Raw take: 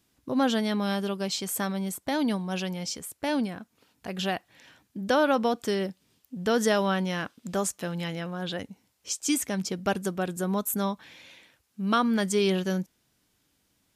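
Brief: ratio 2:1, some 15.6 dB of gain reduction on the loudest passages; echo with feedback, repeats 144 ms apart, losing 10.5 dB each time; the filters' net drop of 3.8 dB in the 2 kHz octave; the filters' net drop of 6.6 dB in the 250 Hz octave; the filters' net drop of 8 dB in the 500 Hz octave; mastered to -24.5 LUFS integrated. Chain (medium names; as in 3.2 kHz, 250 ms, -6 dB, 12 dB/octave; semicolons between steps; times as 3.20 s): peaking EQ 250 Hz -7 dB; peaking EQ 500 Hz -8 dB; peaking EQ 2 kHz -4.5 dB; compression 2:1, threshold -54 dBFS; feedback delay 144 ms, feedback 30%, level -10.5 dB; trim +21.5 dB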